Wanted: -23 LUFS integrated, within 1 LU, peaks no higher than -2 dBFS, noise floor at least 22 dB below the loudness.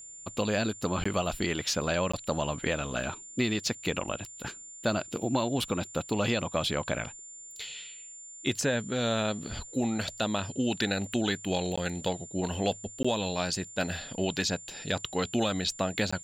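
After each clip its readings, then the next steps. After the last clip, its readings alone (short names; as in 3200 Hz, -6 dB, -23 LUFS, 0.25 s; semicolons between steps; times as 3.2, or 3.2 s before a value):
dropouts 5; longest dropout 15 ms; steady tone 7200 Hz; tone level -44 dBFS; loudness -31.0 LUFS; peak -16.0 dBFS; loudness target -23.0 LUFS
-> interpolate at 1.04/2.12/11.76/13.03/16.11, 15 ms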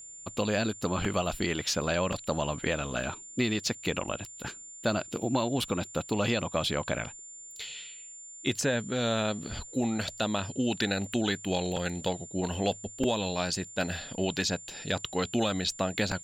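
dropouts 0; steady tone 7200 Hz; tone level -44 dBFS
-> notch 7200 Hz, Q 30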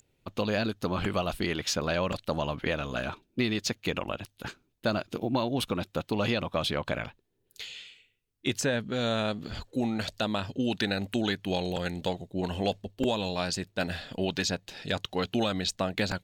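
steady tone none; loudness -31.0 LUFS; peak -14.0 dBFS; loudness target -23.0 LUFS
-> gain +8 dB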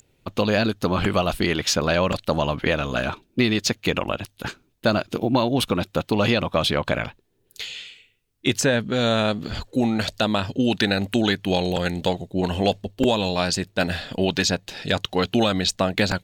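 loudness -23.0 LUFS; peak -6.0 dBFS; noise floor -66 dBFS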